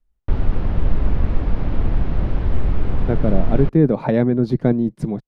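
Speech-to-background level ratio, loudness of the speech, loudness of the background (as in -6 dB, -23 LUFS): 5.0 dB, -19.0 LUFS, -24.0 LUFS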